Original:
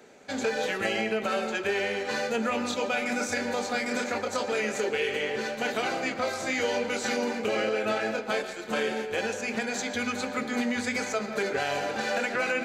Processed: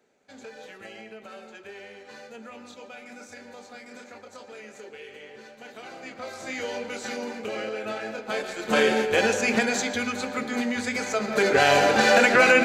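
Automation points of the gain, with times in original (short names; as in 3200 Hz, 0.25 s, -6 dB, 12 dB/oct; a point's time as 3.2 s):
5.69 s -15 dB
6.53 s -4.5 dB
8.15 s -4.5 dB
8.79 s +8 dB
9.57 s +8 dB
10.09 s +1 dB
11.03 s +1 dB
11.67 s +11 dB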